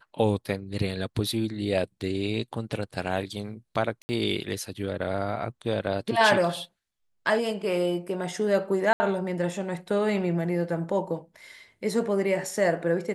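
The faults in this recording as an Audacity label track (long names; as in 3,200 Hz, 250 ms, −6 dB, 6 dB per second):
4.020000	4.090000	drop-out 70 ms
8.930000	9.000000	drop-out 70 ms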